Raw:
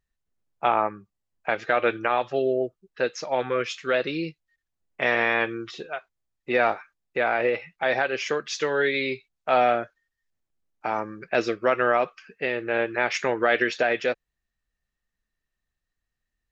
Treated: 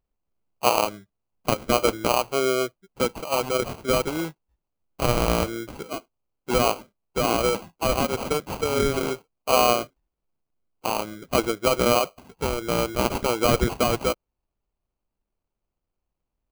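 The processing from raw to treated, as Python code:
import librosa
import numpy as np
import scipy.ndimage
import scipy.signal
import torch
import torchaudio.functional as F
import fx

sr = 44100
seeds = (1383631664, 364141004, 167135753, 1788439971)

y = fx.sample_hold(x, sr, seeds[0], rate_hz=1800.0, jitter_pct=0)
y = F.gain(torch.from_numpy(y), 1.0).numpy()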